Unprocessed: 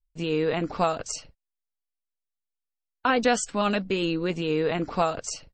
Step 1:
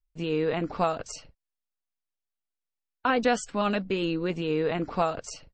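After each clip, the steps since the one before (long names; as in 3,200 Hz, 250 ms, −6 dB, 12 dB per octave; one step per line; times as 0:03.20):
low-pass filter 3,800 Hz 6 dB per octave
level −1.5 dB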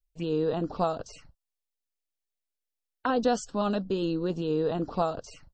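phaser swept by the level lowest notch 190 Hz, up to 2,200 Hz, full sweep at −28.5 dBFS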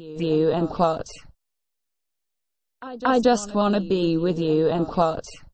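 echo ahead of the sound 230 ms −16.5 dB
level +7 dB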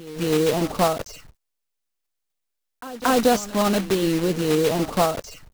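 one scale factor per block 3 bits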